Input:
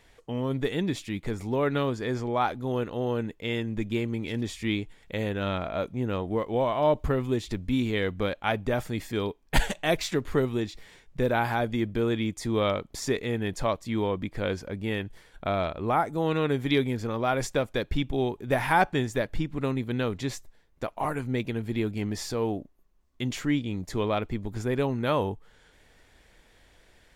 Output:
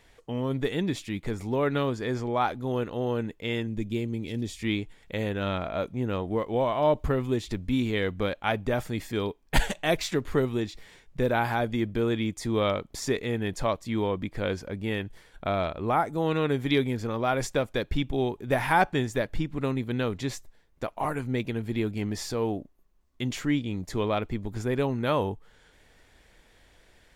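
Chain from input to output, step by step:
0:03.67–0:04.59: parametric band 1,300 Hz −10 dB 1.9 octaves

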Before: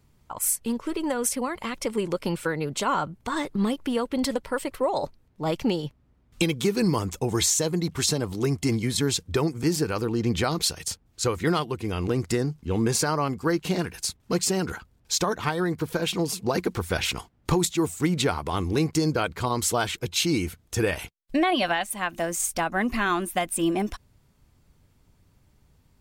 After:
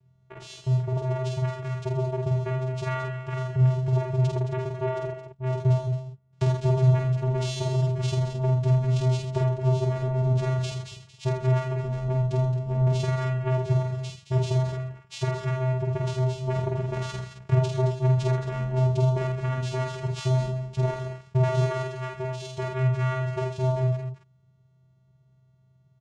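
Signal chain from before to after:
channel vocoder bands 4, square 129 Hz
double-tracking delay 48 ms −3 dB
multi-tap delay 81/219 ms −8.5/−10 dB

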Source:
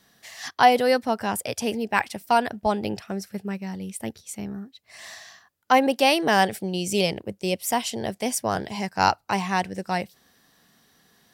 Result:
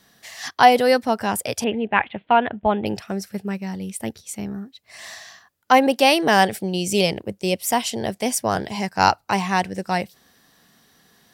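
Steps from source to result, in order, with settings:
0:01.64–0:02.86: Butterworth low-pass 3,500 Hz 72 dB per octave
level +3.5 dB

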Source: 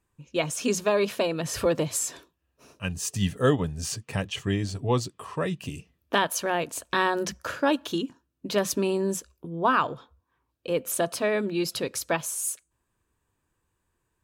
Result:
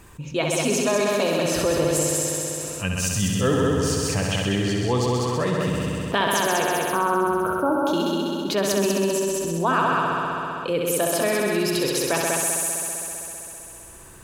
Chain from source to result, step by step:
0:06.62–0:07.87: linear-phase brick-wall band-stop 1,600–9,100 Hz
on a send: echo machine with several playback heads 65 ms, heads all three, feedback 62%, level −6.5 dB
on the sum: envelope flattener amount 50%
level −1.5 dB

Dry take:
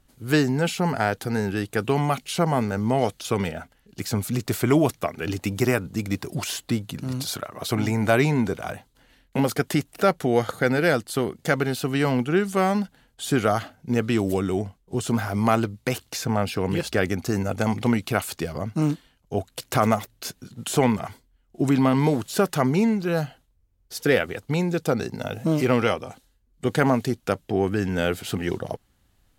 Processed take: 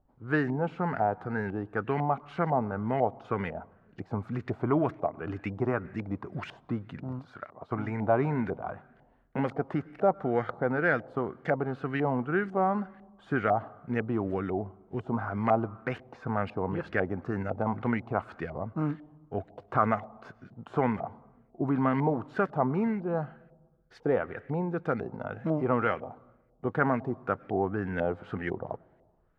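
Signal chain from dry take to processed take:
on a send at −23 dB: convolution reverb RT60 1.2 s, pre-delay 96 ms
on the sum: auto-filter low-pass saw up 2 Hz 720–2,000 Hz
0:07.19–0:08.02: expander for the loud parts 1.5 to 1, over −33 dBFS
level −8 dB

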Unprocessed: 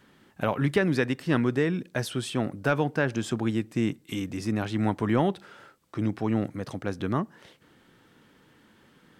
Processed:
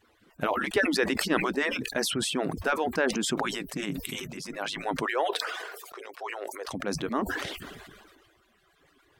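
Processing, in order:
harmonic-percussive split with one part muted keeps percussive
0:05.06–0:06.68: elliptic high-pass filter 390 Hz, stop band 50 dB
level that may fall only so fast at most 33 dB per second

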